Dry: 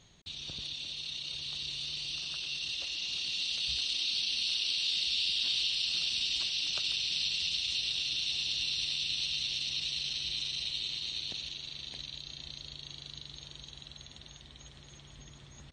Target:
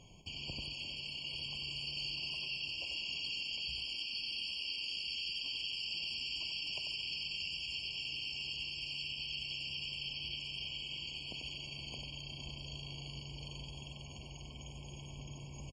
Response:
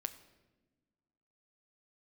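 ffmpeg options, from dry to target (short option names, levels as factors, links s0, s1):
-filter_complex "[0:a]acompressor=threshold=0.0126:ratio=6,asplit=2[s0][s1];[s1]aecho=0:1:92:0.501[s2];[s0][s2]amix=inputs=2:normalize=0,afftfilt=real='re*eq(mod(floor(b*sr/1024/1100),2),0)':imag='im*eq(mod(floor(b*sr/1024/1100),2),0)':win_size=1024:overlap=0.75,volume=1.58"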